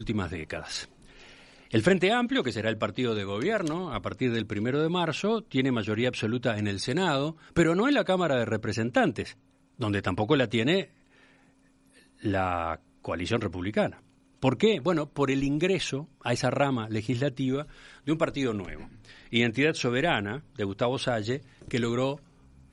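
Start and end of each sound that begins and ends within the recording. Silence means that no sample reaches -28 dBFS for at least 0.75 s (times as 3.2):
1.74–10.82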